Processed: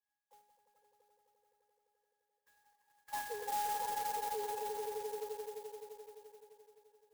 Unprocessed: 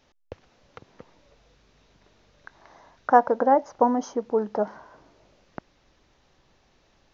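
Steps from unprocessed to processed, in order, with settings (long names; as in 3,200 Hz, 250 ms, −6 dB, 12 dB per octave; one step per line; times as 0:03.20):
three sine waves on the formant tracks
low-pass filter 2,800 Hz 24 dB per octave
notch filter 590 Hz, Q 14
resonances in every octave G#, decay 0.79 s
echo that builds up and dies away 86 ms, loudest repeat 5, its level −8.5 dB
brickwall limiter −36.5 dBFS, peak gain reduction 12 dB
spectral tilt +3 dB per octave
converter with an unsteady clock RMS 0.071 ms
level +6.5 dB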